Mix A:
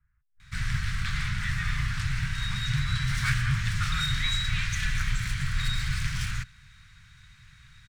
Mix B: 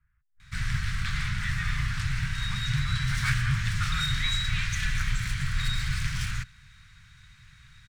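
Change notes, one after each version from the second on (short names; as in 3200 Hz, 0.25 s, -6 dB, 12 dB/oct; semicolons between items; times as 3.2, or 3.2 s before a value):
speech: remove air absorption 290 m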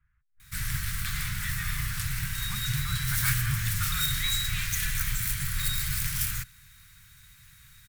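background -3.5 dB; master: remove air absorption 120 m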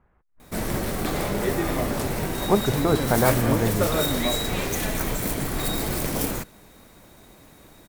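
speech +4.5 dB; master: remove elliptic band-stop 130–1500 Hz, stop band 80 dB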